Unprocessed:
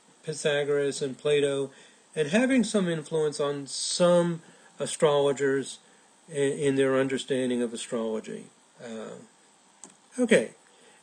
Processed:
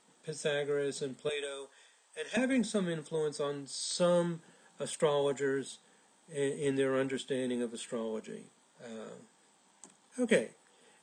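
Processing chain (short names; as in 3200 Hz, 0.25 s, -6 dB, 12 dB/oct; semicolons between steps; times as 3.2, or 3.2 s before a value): 1.29–2.37 HPF 680 Hz 12 dB/oct; gain -7 dB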